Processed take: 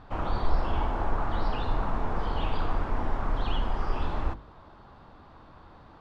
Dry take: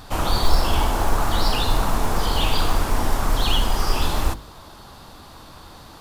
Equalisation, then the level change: low-pass 1.9 kHz 12 dB/octave; -7.5 dB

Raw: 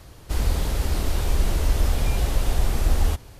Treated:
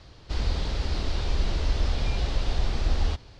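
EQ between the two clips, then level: four-pole ladder low-pass 5.5 kHz, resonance 40%; +4.0 dB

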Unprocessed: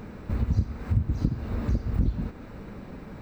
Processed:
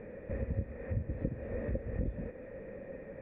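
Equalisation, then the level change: cascade formant filter e; +9.0 dB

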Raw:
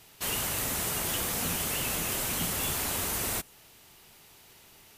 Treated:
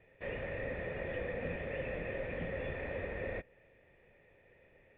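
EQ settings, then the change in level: cascade formant filter e; bass shelf 160 Hz +11 dB; +7.5 dB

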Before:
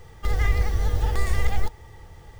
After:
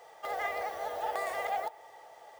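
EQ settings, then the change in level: dynamic bell 5.9 kHz, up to -7 dB, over -53 dBFS, Q 0.81; resonant high-pass 660 Hz, resonance Q 4.9; -4.5 dB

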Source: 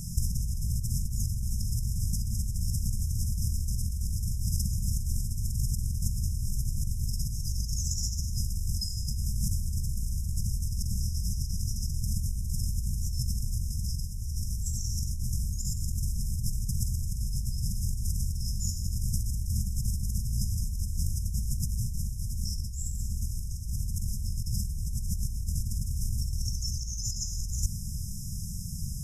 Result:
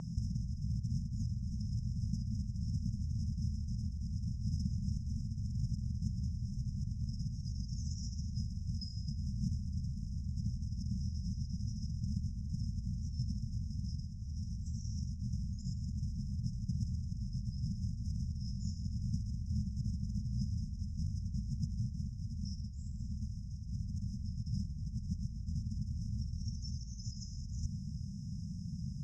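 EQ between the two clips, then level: band-pass filter 890 Hz, Q 1.1; distance through air 220 m; +14.5 dB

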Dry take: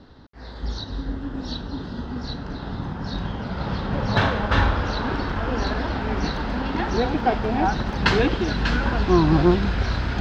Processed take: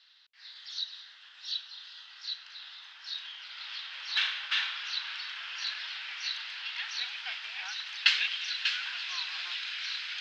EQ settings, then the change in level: ladder high-pass 2.2 kHz, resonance 35%; distance through air 62 m; +8.0 dB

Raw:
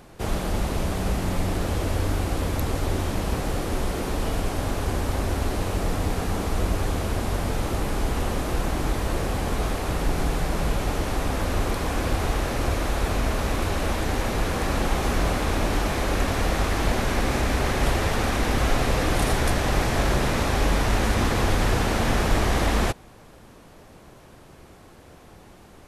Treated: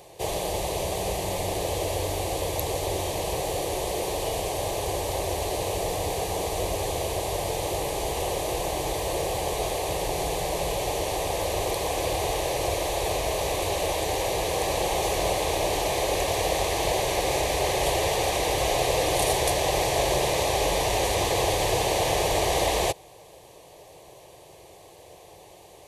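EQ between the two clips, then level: high-pass 290 Hz 6 dB/octave; static phaser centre 580 Hz, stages 4; band-stop 5.2 kHz, Q 13; +5.5 dB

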